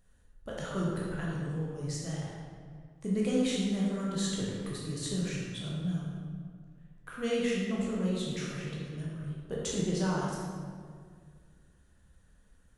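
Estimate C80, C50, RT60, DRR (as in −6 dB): 0.5 dB, −1.5 dB, 2.0 s, −5.5 dB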